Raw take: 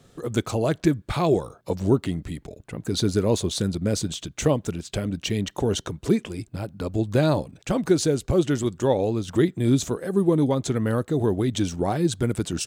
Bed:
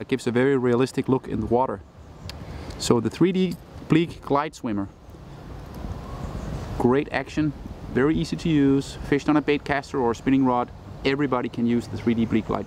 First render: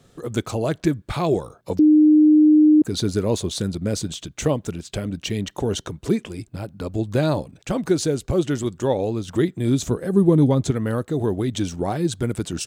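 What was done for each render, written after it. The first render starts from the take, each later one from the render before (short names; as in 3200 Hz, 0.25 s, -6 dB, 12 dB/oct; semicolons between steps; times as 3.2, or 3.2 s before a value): 1.79–2.82 bleep 305 Hz -9.5 dBFS; 9.86–10.71 low shelf 260 Hz +9.5 dB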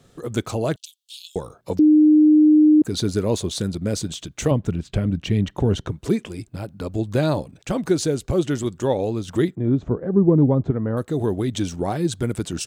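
0.76–1.36 steep high-pass 2800 Hz 96 dB/oct; 4.51–5.92 tone controls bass +8 dB, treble -10 dB; 9.55–10.97 LPF 1100 Hz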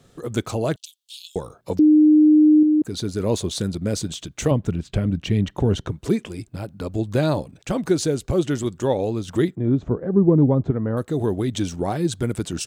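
2.63–3.2 gain -4 dB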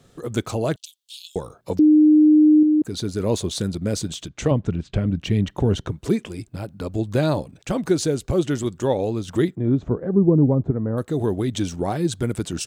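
4.28–5.17 air absorption 67 m; 10.15–10.98 bell 4500 Hz -14.5 dB 2.7 oct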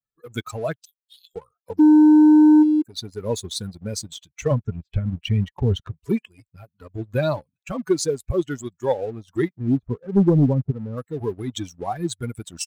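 per-bin expansion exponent 2; sample leveller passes 1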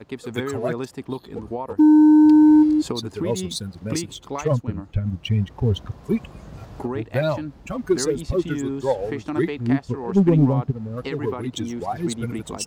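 add bed -8.5 dB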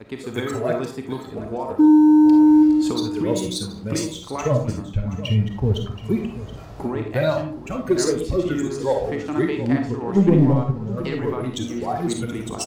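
echo 0.725 s -15 dB; digital reverb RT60 0.45 s, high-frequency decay 0.4×, pre-delay 10 ms, DRR 3 dB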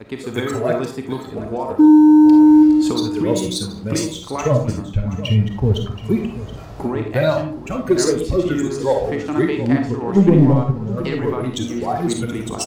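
gain +3.5 dB; limiter -2 dBFS, peak gain reduction 1.5 dB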